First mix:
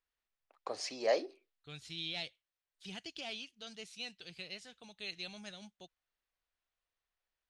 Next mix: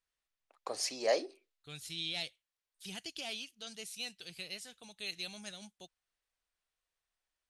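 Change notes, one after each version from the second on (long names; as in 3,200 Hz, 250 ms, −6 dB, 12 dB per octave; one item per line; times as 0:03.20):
master: remove high-frequency loss of the air 98 metres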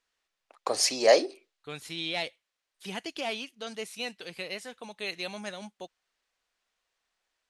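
first voice +10.5 dB
second voice: add graphic EQ with 10 bands 250 Hz +9 dB, 500 Hz +11 dB, 1,000 Hz +12 dB, 2,000 Hz +8 dB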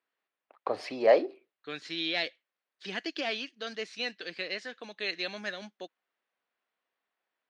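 first voice: add high-frequency loss of the air 440 metres
second voice: add loudspeaker in its box 220–5,600 Hz, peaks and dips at 310 Hz +5 dB, 880 Hz −7 dB, 1,700 Hz +9 dB, 4,400 Hz +4 dB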